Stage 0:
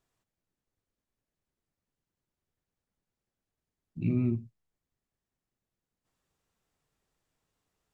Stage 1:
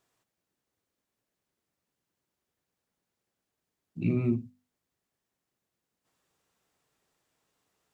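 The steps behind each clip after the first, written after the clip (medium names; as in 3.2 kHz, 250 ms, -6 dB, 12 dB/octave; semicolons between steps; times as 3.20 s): high-pass 190 Hz 6 dB/octave; hum notches 50/100/150/200/250 Hz; trim +5.5 dB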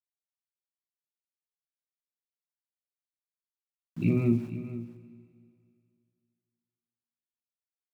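small samples zeroed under -50.5 dBFS; delay 474 ms -14.5 dB; Schroeder reverb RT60 2.3 s, combs from 30 ms, DRR 12.5 dB; trim +2.5 dB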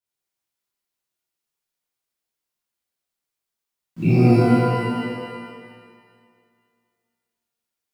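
pitch-shifted reverb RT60 1.7 s, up +12 st, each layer -8 dB, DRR -11 dB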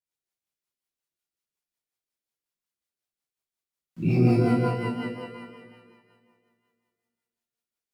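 rotary cabinet horn 5.5 Hz; trim -4 dB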